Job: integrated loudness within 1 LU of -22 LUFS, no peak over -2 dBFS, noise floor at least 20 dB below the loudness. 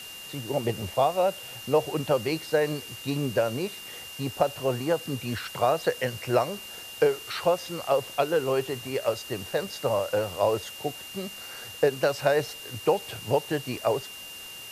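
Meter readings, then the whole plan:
steady tone 2800 Hz; tone level -41 dBFS; noise floor -42 dBFS; noise floor target -48 dBFS; loudness -28.0 LUFS; peak -9.0 dBFS; loudness target -22.0 LUFS
-> notch 2800 Hz, Q 30; noise print and reduce 6 dB; gain +6 dB

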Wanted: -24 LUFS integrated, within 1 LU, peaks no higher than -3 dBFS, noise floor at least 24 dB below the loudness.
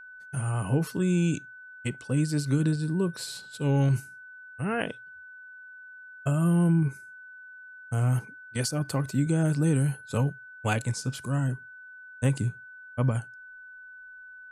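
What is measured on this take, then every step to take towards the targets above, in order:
steady tone 1500 Hz; tone level -44 dBFS; loudness -28.0 LUFS; peak -10.5 dBFS; loudness target -24.0 LUFS
-> notch 1500 Hz, Q 30; gain +4 dB

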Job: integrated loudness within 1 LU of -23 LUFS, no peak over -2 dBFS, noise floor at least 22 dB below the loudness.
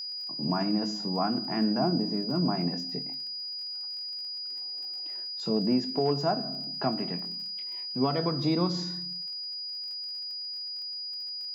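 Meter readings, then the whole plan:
ticks 37/s; steady tone 4900 Hz; tone level -34 dBFS; loudness -30.0 LUFS; peak -15.0 dBFS; loudness target -23.0 LUFS
-> de-click; notch 4900 Hz, Q 30; gain +7 dB

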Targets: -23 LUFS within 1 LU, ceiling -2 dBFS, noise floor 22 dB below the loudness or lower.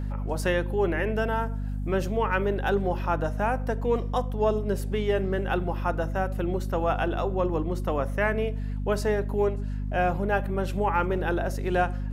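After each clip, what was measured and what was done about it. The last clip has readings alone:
hum 50 Hz; harmonics up to 250 Hz; hum level -28 dBFS; loudness -27.5 LUFS; peak -11.0 dBFS; loudness target -23.0 LUFS
-> de-hum 50 Hz, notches 5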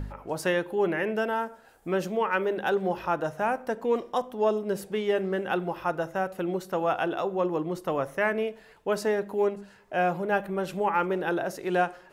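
hum none; loudness -28.5 LUFS; peak -12.5 dBFS; loudness target -23.0 LUFS
-> gain +5.5 dB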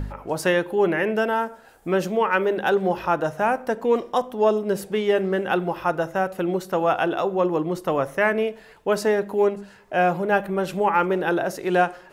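loudness -23.0 LUFS; peak -7.0 dBFS; noise floor -49 dBFS

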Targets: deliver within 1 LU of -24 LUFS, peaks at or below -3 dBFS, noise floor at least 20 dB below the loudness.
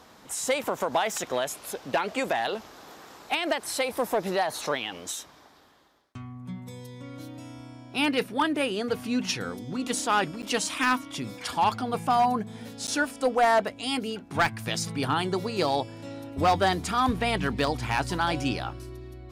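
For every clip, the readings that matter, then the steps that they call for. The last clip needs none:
clipped 0.4%; flat tops at -16.0 dBFS; dropouts 2; longest dropout 9.0 ms; loudness -27.5 LUFS; peak -16.0 dBFS; loudness target -24.0 LUFS
-> clip repair -16 dBFS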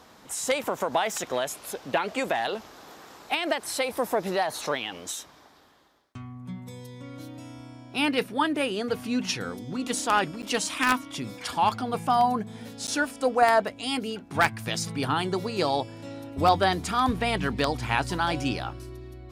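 clipped 0.0%; dropouts 2; longest dropout 9.0 ms
-> interpolate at 10.42/12.87, 9 ms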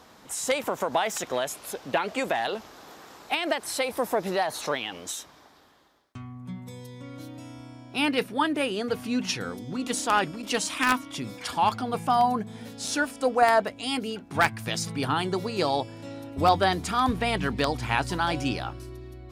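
dropouts 0; loudness -27.0 LUFS; peak -7.0 dBFS; loudness target -24.0 LUFS
-> gain +3 dB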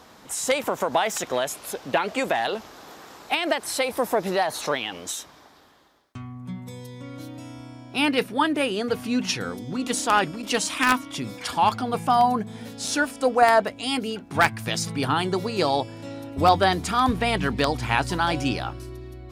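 loudness -24.0 LUFS; peak -4.0 dBFS; noise floor -50 dBFS

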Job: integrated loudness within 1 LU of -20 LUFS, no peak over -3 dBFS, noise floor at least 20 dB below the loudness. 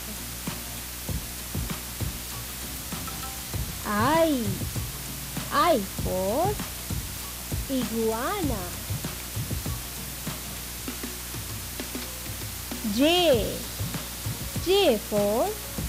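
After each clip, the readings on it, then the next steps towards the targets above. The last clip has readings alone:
hum 60 Hz; harmonics up to 360 Hz; hum level -40 dBFS; noise floor -36 dBFS; noise floor target -48 dBFS; loudness -28.0 LUFS; peak -11.5 dBFS; loudness target -20.0 LUFS
-> de-hum 60 Hz, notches 6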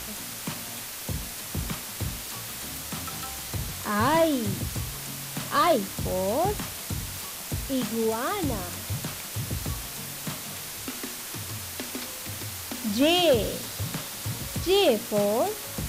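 hum none; noise floor -37 dBFS; noise floor target -48 dBFS
-> denoiser 11 dB, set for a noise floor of -37 dBFS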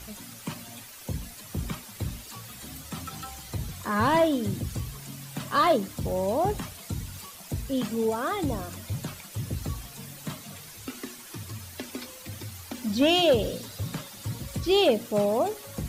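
noise floor -45 dBFS; noise floor target -49 dBFS
-> denoiser 6 dB, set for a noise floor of -45 dBFS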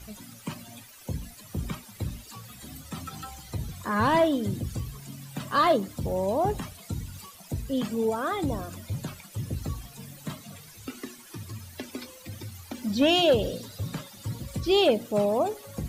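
noise floor -49 dBFS; loudness -28.0 LUFS; peak -12.0 dBFS; loudness target -20.0 LUFS
-> gain +8 dB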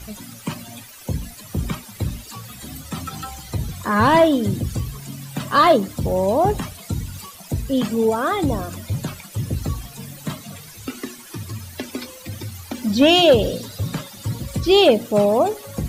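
loudness -20.0 LUFS; peak -4.0 dBFS; noise floor -41 dBFS

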